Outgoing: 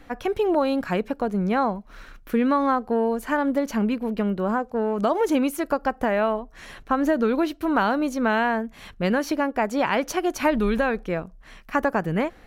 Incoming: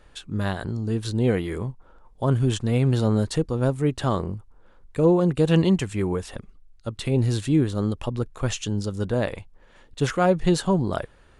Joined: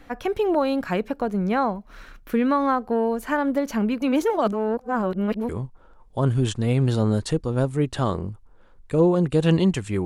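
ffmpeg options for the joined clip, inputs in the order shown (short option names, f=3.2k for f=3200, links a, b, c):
-filter_complex "[0:a]apad=whole_dur=10.05,atrim=end=10.05,asplit=2[a][b];[a]atrim=end=4.022[c];[b]atrim=start=4.018:end=5.492,asetpts=PTS-STARTPTS,areverse[d];[1:a]atrim=start=1.538:end=6.1[e];[c][d]acrossfade=d=0.004:c1=hsin:c2=hsin[f];[f][e]acrossfade=d=0.004:c1=hsin:c2=hsin"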